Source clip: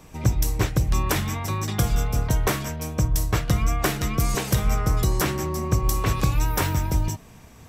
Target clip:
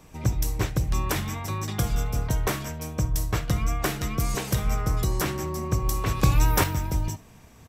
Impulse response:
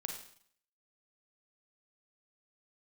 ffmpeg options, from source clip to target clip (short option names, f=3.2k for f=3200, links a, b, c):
-filter_complex "[0:a]asettb=1/sr,asplit=3[a][b][c];[a]atrim=end=6.234[d];[b]atrim=start=6.23:end=6.64,asetpts=PTS-STARTPTS,afade=t=in:d=0.004:c=qsin,afade=t=out:st=0.406:d=0.004:c=qsin,acontrast=48[e];[c]atrim=start=6.636[f];[d][e]acrossfade=d=0.004:c1=hsin:c2=qsin[g];[g][f]acrossfade=d=0.004:c1=qsin:c2=hsin,asplit=2[h][i];[i]aecho=0:1:70:0.0794[j];[h][j]amix=inputs=2:normalize=0,volume=-3.5dB"